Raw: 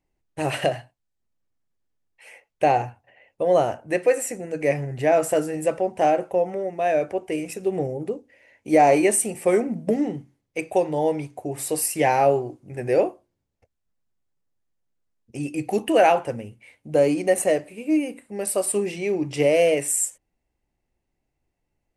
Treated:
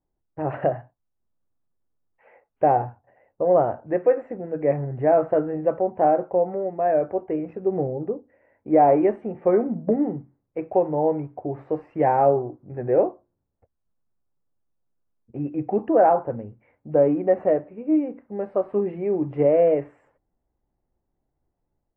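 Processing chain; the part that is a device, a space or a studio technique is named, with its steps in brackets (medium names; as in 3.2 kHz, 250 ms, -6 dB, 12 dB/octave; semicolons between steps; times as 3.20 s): 15.88–16.30 s: low-pass 1.6 kHz 12 dB/octave; action camera in a waterproof case (low-pass 1.4 kHz 24 dB/octave; level rider gain up to 4 dB; trim -3 dB; AAC 48 kbps 22.05 kHz)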